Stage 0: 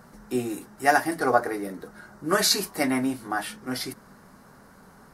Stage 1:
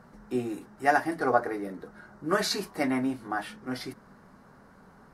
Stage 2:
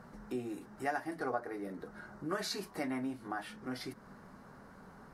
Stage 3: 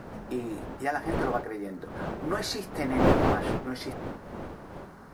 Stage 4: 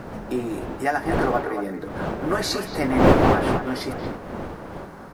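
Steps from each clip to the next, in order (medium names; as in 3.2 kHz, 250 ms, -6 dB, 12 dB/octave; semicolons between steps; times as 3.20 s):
low-pass 2.7 kHz 6 dB/octave; trim -2.5 dB
compression 2:1, threshold -42 dBFS, peak gain reduction 14 dB
wind noise 580 Hz -37 dBFS; companded quantiser 8-bit; trim +5.5 dB
speakerphone echo 230 ms, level -8 dB; trim +6.5 dB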